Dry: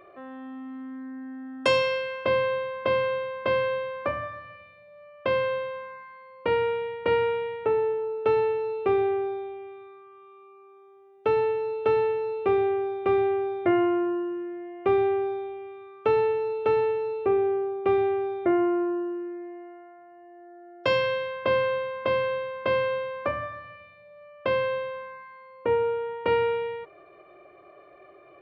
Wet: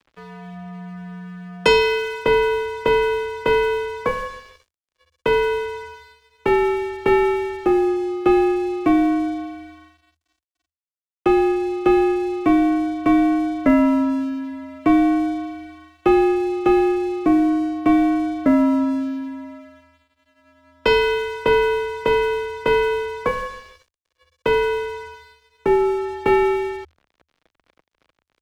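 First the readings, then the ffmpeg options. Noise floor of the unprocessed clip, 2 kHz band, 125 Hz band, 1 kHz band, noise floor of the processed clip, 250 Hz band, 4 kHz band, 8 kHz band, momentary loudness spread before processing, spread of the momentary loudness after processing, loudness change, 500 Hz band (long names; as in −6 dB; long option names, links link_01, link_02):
−52 dBFS, +7.0 dB, +4.5 dB, +6.5 dB, −84 dBFS, +13.5 dB, +7.0 dB, can't be measured, 15 LU, 16 LU, +7.0 dB, +4.0 dB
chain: -af "aeval=exprs='sgn(val(0))*max(abs(val(0))-0.00562,0)':channel_layout=same,afreqshift=-81,volume=7.5dB"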